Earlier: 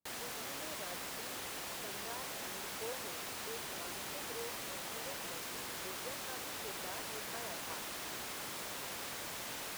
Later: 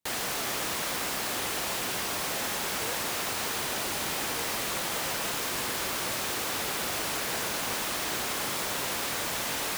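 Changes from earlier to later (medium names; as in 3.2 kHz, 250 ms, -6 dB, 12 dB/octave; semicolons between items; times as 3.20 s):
background +10.5 dB; reverb: on, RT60 1.6 s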